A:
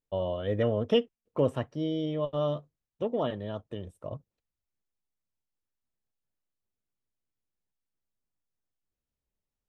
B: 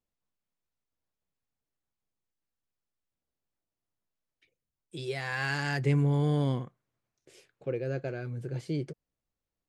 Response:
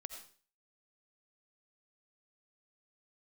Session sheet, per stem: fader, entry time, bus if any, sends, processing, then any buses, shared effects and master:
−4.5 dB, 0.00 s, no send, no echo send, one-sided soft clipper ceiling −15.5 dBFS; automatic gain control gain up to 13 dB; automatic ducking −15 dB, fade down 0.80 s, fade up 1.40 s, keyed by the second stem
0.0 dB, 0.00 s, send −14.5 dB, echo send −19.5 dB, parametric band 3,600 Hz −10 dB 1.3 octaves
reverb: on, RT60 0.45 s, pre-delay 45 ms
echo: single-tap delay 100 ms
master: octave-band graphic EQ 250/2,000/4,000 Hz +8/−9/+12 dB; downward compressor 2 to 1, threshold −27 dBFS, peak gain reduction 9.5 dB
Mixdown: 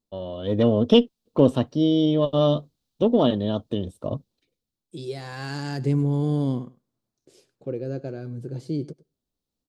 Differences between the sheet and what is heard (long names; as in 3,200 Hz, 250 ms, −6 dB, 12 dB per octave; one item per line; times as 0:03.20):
stem B: send −14.5 dB → −23 dB
master: missing downward compressor 2 to 1, threshold −27 dBFS, peak gain reduction 9.5 dB